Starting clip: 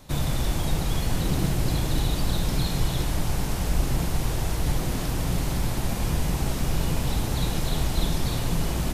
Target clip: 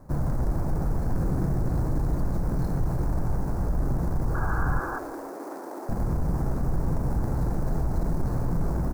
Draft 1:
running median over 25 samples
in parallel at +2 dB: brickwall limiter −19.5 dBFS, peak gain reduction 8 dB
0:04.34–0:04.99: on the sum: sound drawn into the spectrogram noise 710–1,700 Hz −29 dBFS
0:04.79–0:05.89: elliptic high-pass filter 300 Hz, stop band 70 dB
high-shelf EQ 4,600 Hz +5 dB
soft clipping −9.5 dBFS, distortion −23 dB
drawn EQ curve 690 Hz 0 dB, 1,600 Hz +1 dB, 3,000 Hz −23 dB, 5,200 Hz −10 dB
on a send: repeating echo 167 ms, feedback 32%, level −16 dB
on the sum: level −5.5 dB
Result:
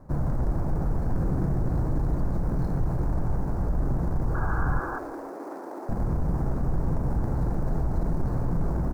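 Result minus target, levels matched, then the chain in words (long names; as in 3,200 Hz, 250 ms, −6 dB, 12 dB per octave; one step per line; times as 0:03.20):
8,000 Hz band −7.5 dB
running median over 25 samples
in parallel at +2 dB: brickwall limiter −19.5 dBFS, peak gain reduction 8 dB
0:04.34–0:04.99: on the sum: sound drawn into the spectrogram noise 710–1,700 Hz −29 dBFS
0:04.79–0:05.89: elliptic high-pass filter 300 Hz, stop band 70 dB
high-shelf EQ 4,600 Hz +15.5 dB
soft clipping −9.5 dBFS, distortion −23 dB
drawn EQ curve 690 Hz 0 dB, 1,600 Hz +1 dB, 3,000 Hz −23 dB, 5,200 Hz −10 dB
on a send: repeating echo 167 ms, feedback 32%, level −16 dB
on the sum: level −5.5 dB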